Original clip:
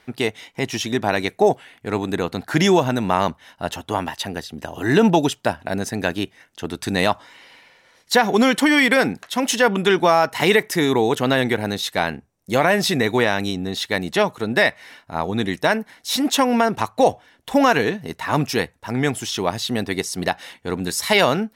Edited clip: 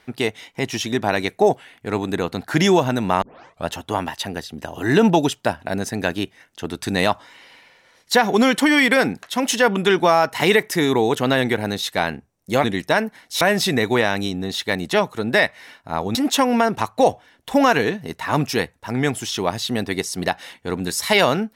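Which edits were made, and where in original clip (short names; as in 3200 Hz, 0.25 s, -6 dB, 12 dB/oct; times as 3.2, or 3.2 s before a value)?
3.22 tape start 0.45 s
15.38–16.15 move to 12.64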